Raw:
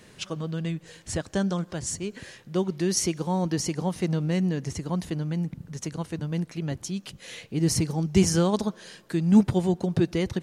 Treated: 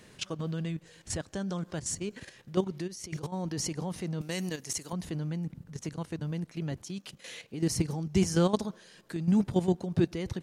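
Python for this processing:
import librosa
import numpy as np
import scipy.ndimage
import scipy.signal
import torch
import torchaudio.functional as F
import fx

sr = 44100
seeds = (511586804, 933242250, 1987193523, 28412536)

y = fx.over_compress(x, sr, threshold_db=-35.0, ratio=-1.0, at=(2.86, 3.32), fade=0.02)
y = fx.riaa(y, sr, side='recording', at=(4.21, 4.93))
y = fx.level_steps(y, sr, step_db=11)
y = fx.low_shelf(y, sr, hz=120.0, db=-11.0, at=(6.82, 7.7))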